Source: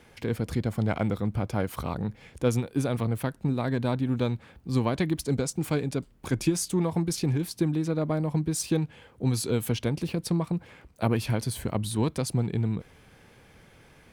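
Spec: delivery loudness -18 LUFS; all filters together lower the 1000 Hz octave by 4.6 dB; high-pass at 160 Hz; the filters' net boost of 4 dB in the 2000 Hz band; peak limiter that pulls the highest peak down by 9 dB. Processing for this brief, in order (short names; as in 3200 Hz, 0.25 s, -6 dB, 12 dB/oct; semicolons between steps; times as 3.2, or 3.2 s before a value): HPF 160 Hz; bell 1000 Hz -8.5 dB; bell 2000 Hz +8 dB; gain +14 dB; limiter -6 dBFS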